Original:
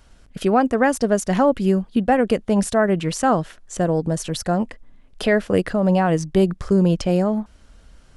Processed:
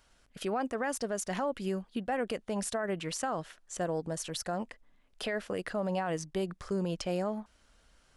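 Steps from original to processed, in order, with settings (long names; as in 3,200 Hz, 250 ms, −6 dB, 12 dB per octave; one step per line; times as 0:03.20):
low-shelf EQ 380 Hz −11 dB
brickwall limiter −16.5 dBFS, peak gain reduction 7.5 dB
level −7.5 dB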